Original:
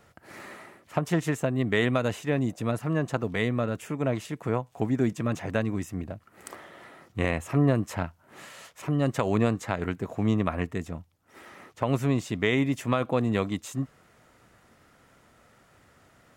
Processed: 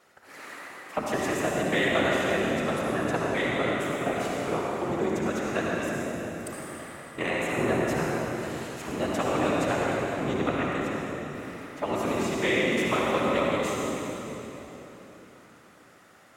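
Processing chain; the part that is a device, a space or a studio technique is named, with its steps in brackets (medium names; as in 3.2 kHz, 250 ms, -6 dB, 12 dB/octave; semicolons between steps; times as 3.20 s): whispering ghost (whisper effect; high-pass 510 Hz 6 dB/octave; reverberation RT60 3.8 s, pre-delay 54 ms, DRR -4 dB)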